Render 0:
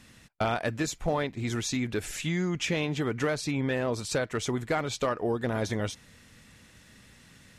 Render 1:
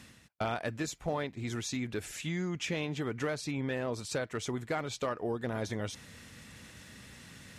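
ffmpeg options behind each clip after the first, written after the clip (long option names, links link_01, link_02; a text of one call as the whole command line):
ffmpeg -i in.wav -af "areverse,acompressor=mode=upward:threshold=-35dB:ratio=2.5,areverse,highpass=49,volume=-5.5dB" out.wav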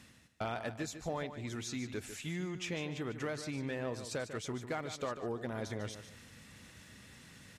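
ffmpeg -i in.wav -af "aecho=1:1:148|296|444:0.299|0.0836|0.0234,volume=-4.5dB" out.wav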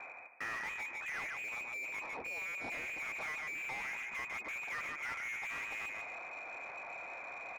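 ffmpeg -i in.wav -filter_complex "[0:a]lowpass=frequency=2200:width_type=q:width=0.5098,lowpass=frequency=2200:width_type=q:width=0.6013,lowpass=frequency=2200:width_type=q:width=0.9,lowpass=frequency=2200:width_type=q:width=2.563,afreqshift=-2600,asplit=2[link_01][link_02];[link_02]highpass=frequency=720:poles=1,volume=31dB,asoftclip=type=tanh:threshold=-24dB[link_03];[link_01][link_03]amix=inputs=2:normalize=0,lowpass=frequency=1300:poles=1,volume=-6dB,volume=-5.5dB" out.wav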